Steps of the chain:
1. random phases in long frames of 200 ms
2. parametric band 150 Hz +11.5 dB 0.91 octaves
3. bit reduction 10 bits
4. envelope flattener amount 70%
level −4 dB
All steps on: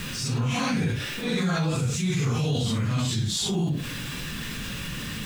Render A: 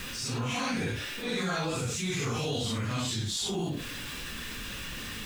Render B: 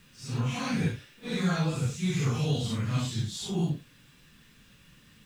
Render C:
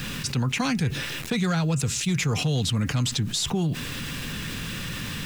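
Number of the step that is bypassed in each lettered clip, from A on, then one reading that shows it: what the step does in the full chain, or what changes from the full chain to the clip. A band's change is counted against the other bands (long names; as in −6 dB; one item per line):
2, 125 Hz band −6.5 dB
4, change in crest factor +2.0 dB
1, 8 kHz band +2.0 dB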